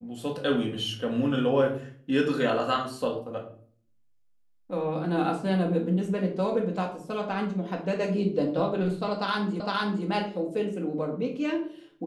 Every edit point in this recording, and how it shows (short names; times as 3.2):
9.6 repeat of the last 0.46 s